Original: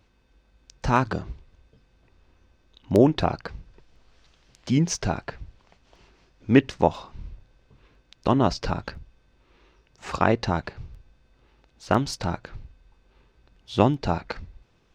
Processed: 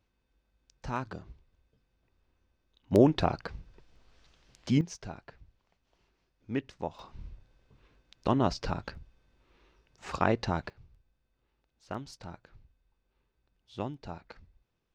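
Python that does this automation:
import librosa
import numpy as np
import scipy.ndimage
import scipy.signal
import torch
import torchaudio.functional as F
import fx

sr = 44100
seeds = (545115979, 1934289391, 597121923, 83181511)

y = fx.gain(x, sr, db=fx.steps((0.0, -13.5), (2.92, -4.0), (4.81, -16.0), (6.99, -6.0), (10.7, -17.0)))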